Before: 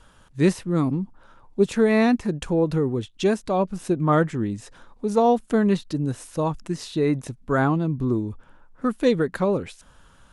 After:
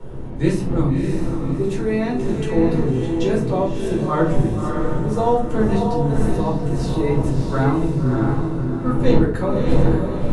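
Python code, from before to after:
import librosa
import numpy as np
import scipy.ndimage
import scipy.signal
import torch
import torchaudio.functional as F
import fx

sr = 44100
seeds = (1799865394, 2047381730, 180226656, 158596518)

p1 = fx.dmg_wind(x, sr, seeds[0], corner_hz=280.0, level_db=-28.0)
p2 = fx.level_steps(p1, sr, step_db=11, at=(1.62, 2.14))
p3 = p2 + fx.echo_diffused(p2, sr, ms=608, feedback_pct=43, wet_db=-4.0, dry=0)
p4 = fx.room_shoebox(p3, sr, seeds[1], volume_m3=260.0, walls='furnished', distance_m=4.4)
y = F.gain(torch.from_numpy(p4), -8.5).numpy()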